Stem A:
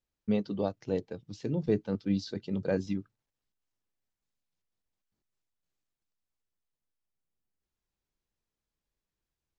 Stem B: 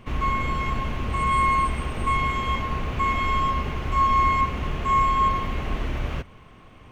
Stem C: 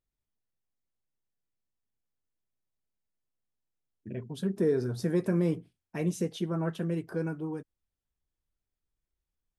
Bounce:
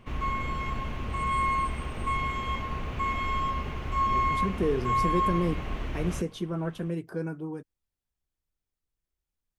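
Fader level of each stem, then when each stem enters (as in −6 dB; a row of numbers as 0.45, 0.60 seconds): muted, −6.0 dB, −0.5 dB; muted, 0.00 s, 0.00 s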